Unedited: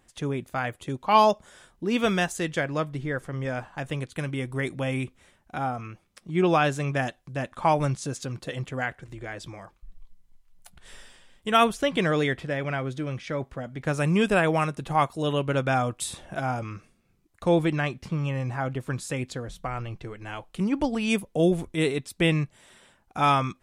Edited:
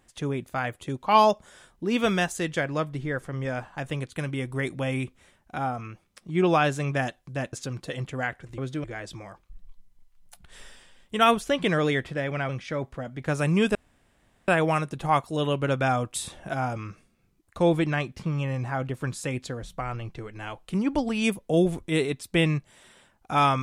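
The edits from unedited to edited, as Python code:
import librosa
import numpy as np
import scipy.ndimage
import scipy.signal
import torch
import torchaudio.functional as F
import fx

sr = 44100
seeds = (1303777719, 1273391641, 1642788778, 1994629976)

y = fx.edit(x, sr, fx.cut(start_s=7.53, length_s=0.59),
    fx.move(start_s=12.82, length_s=0.26, to_s=9.17),
    fx.insert_room_tone(at_s=14.34, length_s=0.73), tone=tone)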